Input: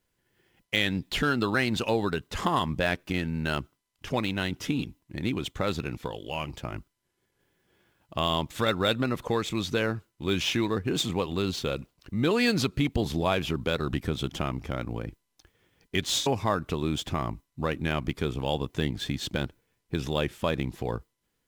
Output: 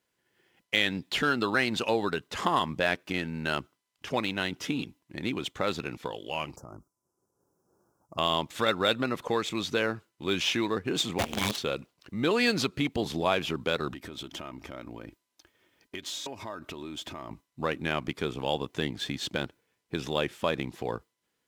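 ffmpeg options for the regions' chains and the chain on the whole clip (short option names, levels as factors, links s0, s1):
-filter_complex "[0:a]asettb=1/sr,asplit=3[s0][s1][s2];[s0]atrim=end=6.564[s3];[s1]atrim=start=6.56:end=8.18,asetpts=PTS-STARTPTS,afade=t=in:d=0.004:c=qsin,afade=t=out:st=1.616:d=0.004:c=qsin,asuperstop=centerf=2700:order=12:qfactor=0.67,acompressor=threshold=0.0126:ratio=10:attack=3.2:release=140:knee=1:detection=peak,lowshelf=f=170:g=5.5[s4];[s2]atrim=start=8.176[s5];[s3][s4]acrossfade=d=0.004:c1=hsin:c2=qsin[s6];[s6][s5]acrossfade=d=0.004:c1=qsin:c2=hsin,asettb=1/sr,asplit=3[s7][s8][s9];[s7]atrim=end=11.184[s10];[s8]atrim=start=11.18:end=11.58,asetpts=PTS-STARTPTS,afade=t=in:d=0.004:c=qsin,afade=t=out:st=0.396:d=0.004:c=qsin,aecho=1:1:6.5:0.81,atrim=end_sample=17640,afreqshift=-390,acrusher=bits=5:dc=4:mix=0:aa=0.000001[s11];[s9]atrim=start=11.576[s12];[s10][s11]acrossfade=d=0.004:c1=hsin:c2=qsin[s13];[s13][s12]acrossfade=d=0.004:c1=qsin:c2=hsin,asettb=1/sr,asplit=3[s14][s15][s16];[s14]atrim=end=13.934[s17];[s15]atrim=start=13.93:end=17.31,asetpts=PTS-STARTPTS,afade=t=in:d=0.004:c=qsin,afade=t=out:st=3.376:d=0.004:c=qsin,equalizer=f=14000:w=6:g=8.5,aecho=1:1:3.2:0.38,atrim=end_sample=149058,acompressor=threshold=0.0224:ratio=8:attack=3.2:release=140:knee=1:detection=peak[s18];[s16]atrim=start=17.306[s19];[s17][s18]acrossfade=d=0.004:c1=hsin:c2=qsin[s20];[s20][s19]acrossfade=d=0.004:c1=qsin:c2=hsin,highpass=f=300:p=1,highshelf=f=11000:g=-7,volume=1.12"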